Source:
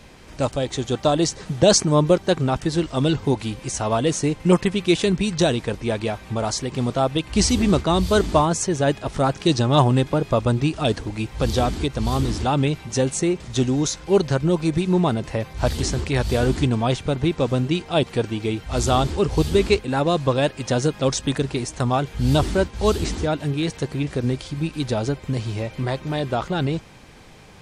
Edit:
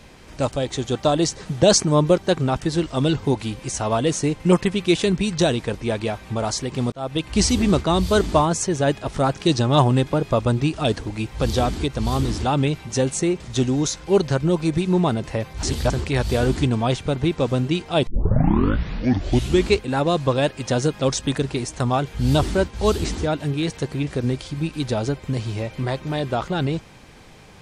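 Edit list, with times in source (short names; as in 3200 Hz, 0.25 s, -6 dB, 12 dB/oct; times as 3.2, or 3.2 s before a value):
6.92–7.21 fade in
15.63–15.9 reverse
18.07 tape start 1.65 s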